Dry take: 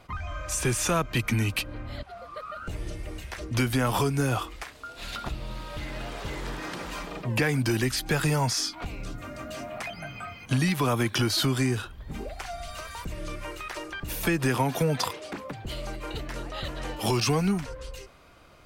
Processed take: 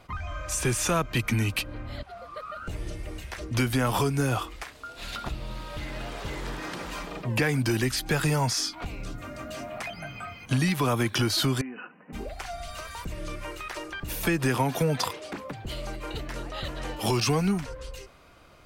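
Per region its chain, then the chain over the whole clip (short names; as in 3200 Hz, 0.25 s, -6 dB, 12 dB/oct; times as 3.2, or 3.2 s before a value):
11.61–12.13 comb 4 ms, depth 47% + compressor 10:1, threshold -33 dBFS + brick-wall FIR band-pass 150–3000 Hz
whole clip: dry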